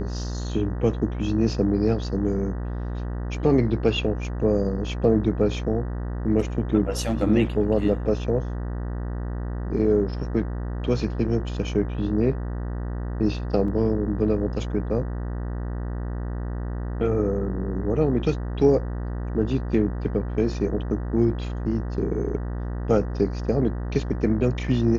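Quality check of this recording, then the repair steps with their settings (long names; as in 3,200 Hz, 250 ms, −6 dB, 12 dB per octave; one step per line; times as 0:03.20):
mains buzz 60 Hz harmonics 32 −29 dBFS
0:13.68: drop-out 2.8 ms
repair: hum removal 60 Hz, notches 32
repair the gap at 0:13.68, 2.8 ms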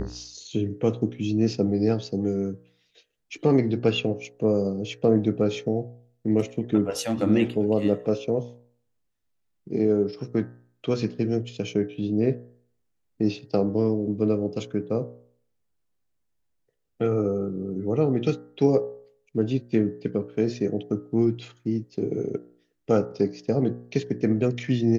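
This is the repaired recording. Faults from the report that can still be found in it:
none of them is left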